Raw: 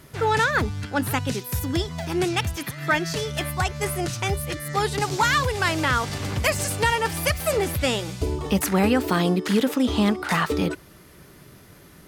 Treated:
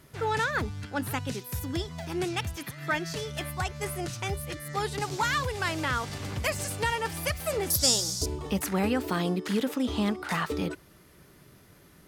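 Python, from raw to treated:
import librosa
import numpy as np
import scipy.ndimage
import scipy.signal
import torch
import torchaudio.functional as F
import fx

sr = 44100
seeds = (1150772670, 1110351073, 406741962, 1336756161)

y = fx.high_shelf_res(x, sr, hz=3700.0, db=14.0, q=3.0, at=(7.7, 8.26))
y = y * 10.0 ** (-7.0 / 20.0)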